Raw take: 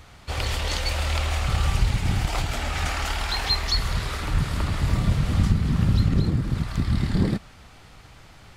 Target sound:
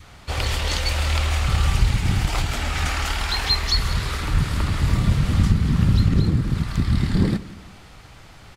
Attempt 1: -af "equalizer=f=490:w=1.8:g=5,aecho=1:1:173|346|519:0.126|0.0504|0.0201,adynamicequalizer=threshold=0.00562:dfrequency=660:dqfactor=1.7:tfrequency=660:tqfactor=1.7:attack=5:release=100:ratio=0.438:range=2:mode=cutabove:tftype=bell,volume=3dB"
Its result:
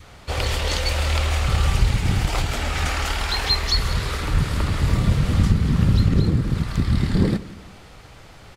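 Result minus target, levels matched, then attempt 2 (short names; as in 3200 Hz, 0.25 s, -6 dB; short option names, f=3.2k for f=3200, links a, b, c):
500 Hz band +3.5 dB
-af "aecho=1:1:173|346|519:0.126|0.0504|0.0201,adynamicequalizer=threshold=0.00562:dfrequency=660:dqfactor=1.7:tfrequency=660:tqfactor=1.7:attack=5:release=100:ratio=0.438:range=2:mode=cutabove:tftype=bell,volume=3dB"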